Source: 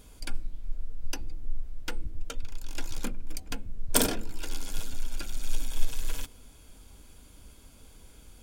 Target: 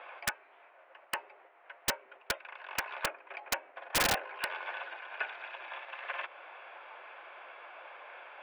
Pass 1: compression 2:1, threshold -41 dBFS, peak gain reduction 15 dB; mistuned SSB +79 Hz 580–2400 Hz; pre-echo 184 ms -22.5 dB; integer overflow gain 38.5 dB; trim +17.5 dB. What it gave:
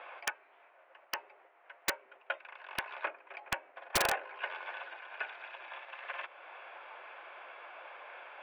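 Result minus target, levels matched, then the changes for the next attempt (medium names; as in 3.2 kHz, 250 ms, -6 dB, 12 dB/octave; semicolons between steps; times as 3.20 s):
compression: peak gain reduction +3 dB
change: compression 2:1, threshold -35 dBFS, peak gain reduction 12 dB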